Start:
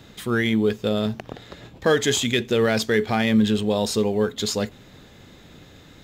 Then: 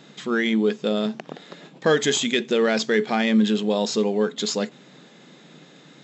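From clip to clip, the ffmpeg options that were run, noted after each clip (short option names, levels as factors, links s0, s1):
-af "afftfilt=real='re*between(b*sr/4096,130,7900)':imag='im*between(b*sr/4096,130,7900)':win_size=4096:overlap=0.75"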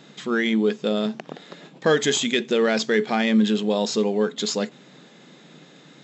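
-af anull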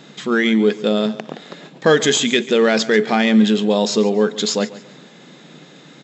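-af "aecho=1:1:140|280|420:0.133|0.0427|0.0137,volume=1.88"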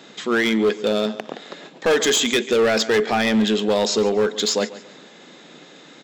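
-af "highpass=270,volume=4.47,asoftclip=hard,volume=0.224"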